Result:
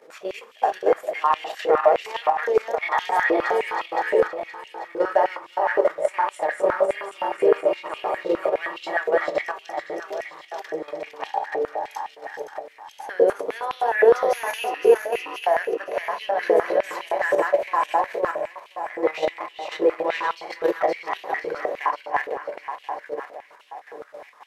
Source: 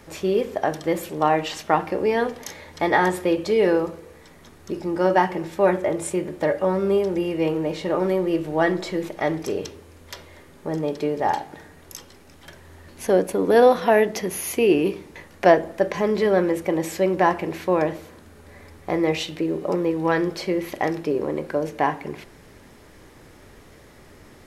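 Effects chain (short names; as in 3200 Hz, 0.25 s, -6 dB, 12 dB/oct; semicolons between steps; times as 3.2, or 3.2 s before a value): regenerating reverse delay 0.259 s, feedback 75%, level -1 dB; high shelf 4100 Hz -8 dB; level quantiser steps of 10 dB; shoebox room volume 200 m³, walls furnished, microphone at 0.52 m; stepped high-pass 9.7 Hz 470–2900 Hz; gain -3.5 dB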